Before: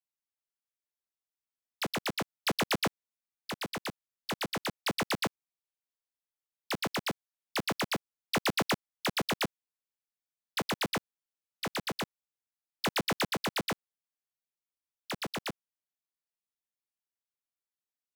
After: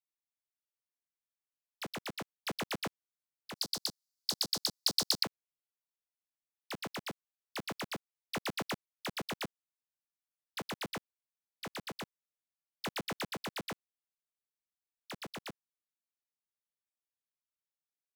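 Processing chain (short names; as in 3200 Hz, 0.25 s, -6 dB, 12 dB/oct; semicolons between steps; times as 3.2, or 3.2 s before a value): 3.56–5.23 resonant high shelf 3300 Hz +12 dB, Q 3; gain -8 dB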